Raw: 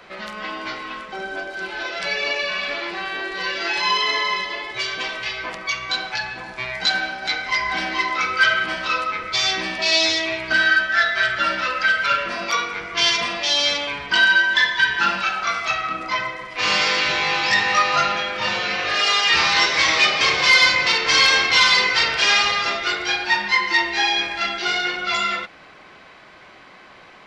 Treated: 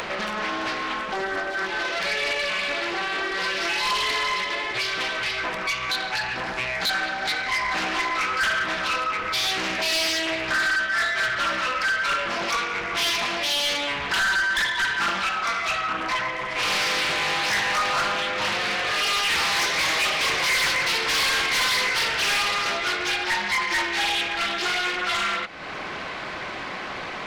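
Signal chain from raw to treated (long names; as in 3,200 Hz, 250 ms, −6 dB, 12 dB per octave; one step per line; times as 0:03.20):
upward compression, threshold −19 dBFS
soft clipping −19.5 dBFS, distortion −9 dB
highs frequency-modulated by the lows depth 0.81 ms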